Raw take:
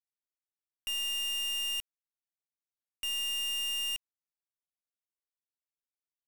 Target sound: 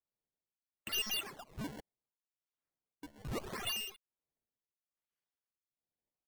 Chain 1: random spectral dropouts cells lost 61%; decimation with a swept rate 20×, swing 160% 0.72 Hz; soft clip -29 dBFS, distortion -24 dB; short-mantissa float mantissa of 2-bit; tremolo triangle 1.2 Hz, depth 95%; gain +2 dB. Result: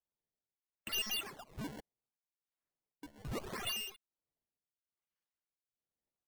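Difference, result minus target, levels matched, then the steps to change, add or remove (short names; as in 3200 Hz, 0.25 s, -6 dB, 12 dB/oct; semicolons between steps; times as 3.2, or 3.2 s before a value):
soft clip: distortion +13 dB
change: soft clip -22 dBFS, distortion -36 dB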